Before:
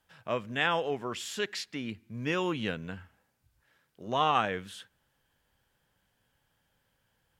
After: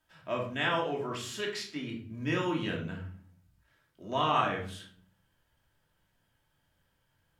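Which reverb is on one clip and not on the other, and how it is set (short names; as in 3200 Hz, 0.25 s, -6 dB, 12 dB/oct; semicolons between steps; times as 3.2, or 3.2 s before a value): shoebox room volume 580 m³, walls furnished, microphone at 2.8 m; gain -5 dB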